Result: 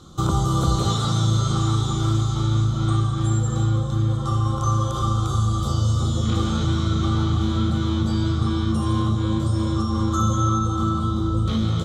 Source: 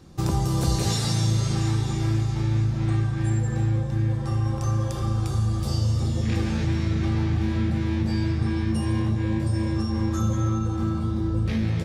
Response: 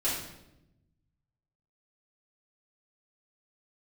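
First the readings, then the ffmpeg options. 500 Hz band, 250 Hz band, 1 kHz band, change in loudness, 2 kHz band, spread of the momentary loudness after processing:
+2.5 dB, +2.5 dB, +9.0 dB, +3.0 dB, −2.0 dB, 2 LU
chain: -filter_complex "[0:a]acrossover=split=2800[link_01][link_02];[link_02]acompressor=threshold=-42dB:ratio=4:attack=1:release=60[link_03];[link_01][link_03]amix=inputs=2:normalize=0,superequalizer=10b=3.16:11b=0.355:12b=0.398:13b=2.82:15b=2.24,volume=2.5dB"

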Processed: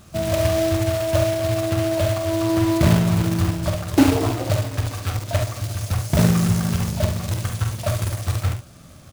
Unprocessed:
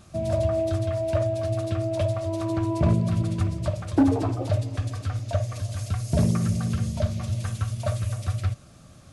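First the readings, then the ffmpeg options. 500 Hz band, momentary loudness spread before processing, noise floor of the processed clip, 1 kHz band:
+5.0 dB, 7 LU, −45 dBFS, +6.0 dB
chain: -af "acrusher=bits=2:mode=log:mix=0:aa=0.000001,aecho=1:1:46|70:0.422|0.335,volume=3dB"

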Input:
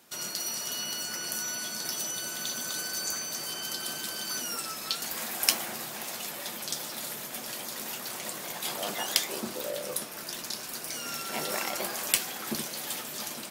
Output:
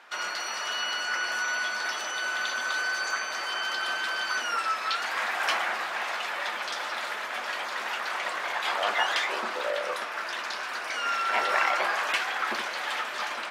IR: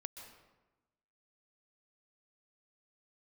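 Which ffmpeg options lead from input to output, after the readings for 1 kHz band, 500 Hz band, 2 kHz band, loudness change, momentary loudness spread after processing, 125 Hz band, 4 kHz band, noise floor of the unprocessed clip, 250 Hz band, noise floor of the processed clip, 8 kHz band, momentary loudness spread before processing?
+11.5 dB, +4.0 dB, +12.0 dB, +3.5 dB, 6 LU, below −10 dB, +1.5 dB, −40 dBFS, −6.5 dB, −35 dBFS, −8.0 dB, 8 LU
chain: -filter_complex "[0:a]asplit=2[link_01][link_02];[link_02]highpass=frequency=720:poles=1,volume=23dB,asoftclip=type=tanh:threshold=-2dB[link_03];[link_01][link_03]amix=inputs=2:normalize=0,lowpass=frequency=1900:poles=1,volume=-6dB,bandpass=frequency=1500:width_type=q:width=1:csg=0"

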